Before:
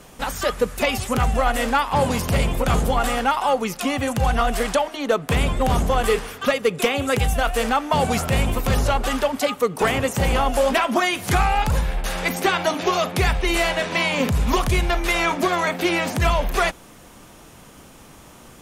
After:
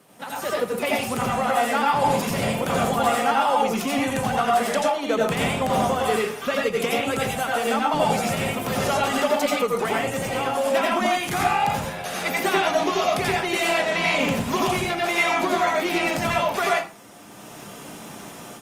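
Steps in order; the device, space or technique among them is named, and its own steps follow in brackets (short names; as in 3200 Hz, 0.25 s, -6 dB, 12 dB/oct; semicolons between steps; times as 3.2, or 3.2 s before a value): far-field microphone of a smart speaker (reverb RT60 0.35 s, pre-delay 80 ms, DRR -3 dB; HPF 130 Hz 24 dB/oct; AGC; gain -8.5 dB; Opus 32 kbps 48000 Hz)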